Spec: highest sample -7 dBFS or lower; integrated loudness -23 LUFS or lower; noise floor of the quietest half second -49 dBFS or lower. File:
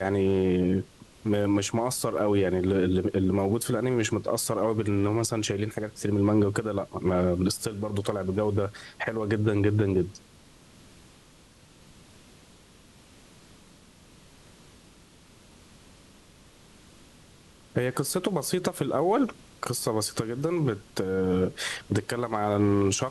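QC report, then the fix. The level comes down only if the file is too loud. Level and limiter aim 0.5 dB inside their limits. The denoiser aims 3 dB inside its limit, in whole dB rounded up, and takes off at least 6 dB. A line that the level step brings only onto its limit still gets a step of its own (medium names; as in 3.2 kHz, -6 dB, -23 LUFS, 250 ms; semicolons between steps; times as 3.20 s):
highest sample -11.5 dBFS: pass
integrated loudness -27.0 LUFS: pass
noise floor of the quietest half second -55 dBFS: pass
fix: none needed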